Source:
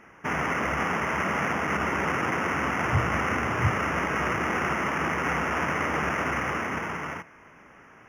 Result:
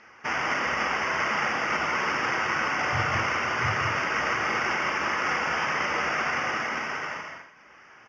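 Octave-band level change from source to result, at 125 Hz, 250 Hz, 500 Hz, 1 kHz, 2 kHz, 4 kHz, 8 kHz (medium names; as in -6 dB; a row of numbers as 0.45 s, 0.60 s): -6.5 dB, -7.0 dB, -2.5 dB, +0.5 dB, +2.0 dB, +6.0 dB, +2.0 dB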